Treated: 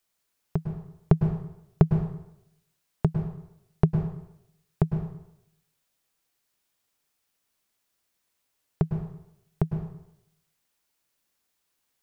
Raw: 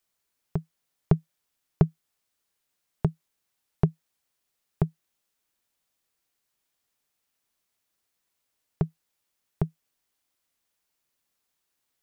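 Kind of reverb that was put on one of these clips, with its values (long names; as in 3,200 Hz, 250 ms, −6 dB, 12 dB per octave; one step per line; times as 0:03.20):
dense smooth reverb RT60 0.79 s, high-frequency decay 0.85×, pre-delay 95 ms, DRR 5.5 dB
level +1.5 dB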